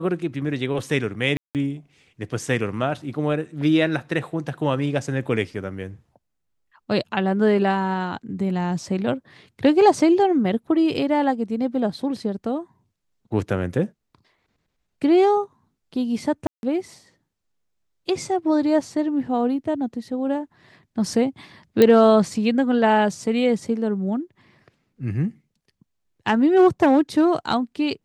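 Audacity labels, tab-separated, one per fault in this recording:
1.370000	1.550000	gap 0.178 s
16.470000	16.630000	gap 0.161 s
21.820000	21.820000	pop -4 dBFS

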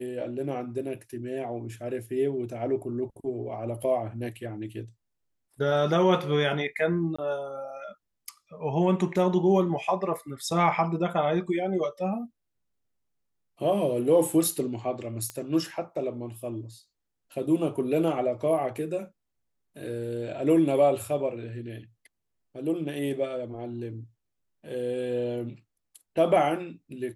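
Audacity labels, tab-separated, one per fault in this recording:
7.160000	7.180000	gap 25 ms
15.300000	15.300000	pop -20 dBFS

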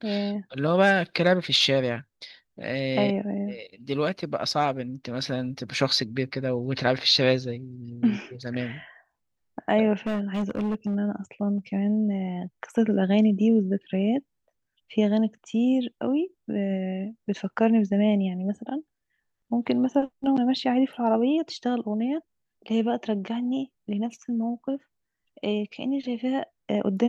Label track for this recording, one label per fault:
10.060000	10.960000	clipped -23 dBFS

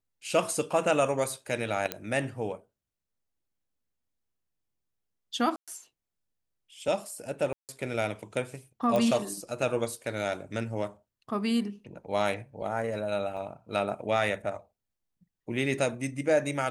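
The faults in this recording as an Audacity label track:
1.920000	1.920000	pop -13 dBFS
5.560000	5.680000	gap 0.116 s
7.530000	7.690000	gap 0.158 s
8.960000	8.960000	pop -16 dBFS
13.370000	13.380000	gap 5 ms

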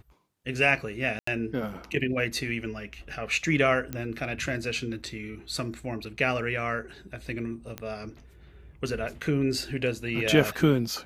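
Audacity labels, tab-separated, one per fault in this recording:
1.190000	1.270000	gap 84 ms
3.930000	3.930000	pop -18 dBFS
7.780000	7.780000	pop -19 dBFS

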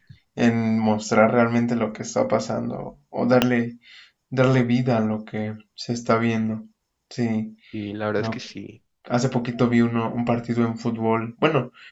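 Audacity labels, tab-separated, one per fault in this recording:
3.420000	3.420000	pop -3 dBFS

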